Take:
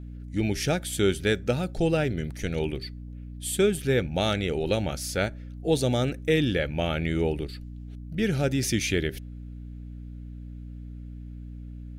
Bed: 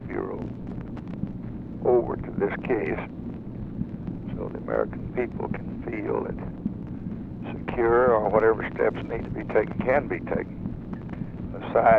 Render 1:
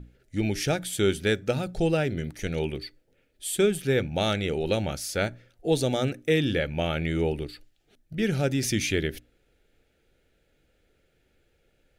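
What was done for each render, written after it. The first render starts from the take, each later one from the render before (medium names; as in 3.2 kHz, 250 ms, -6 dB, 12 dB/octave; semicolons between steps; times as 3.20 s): hum notches 60/120/180/240/300 Hz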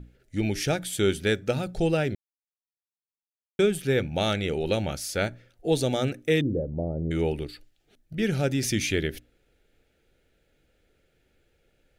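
2.15–3.59 s: mute; 6.41–7.11 s: inverse Chebyshev low-pass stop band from 2.6 kHz, stop band 70 dB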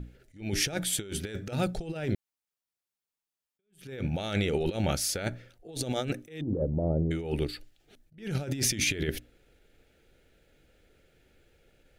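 compressor with a negative ratio -29 dBFS, ratio -0.5; attacks held to a fixed rise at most 170 dB/s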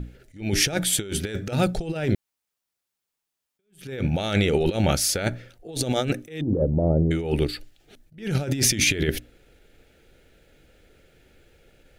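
trim +7 dB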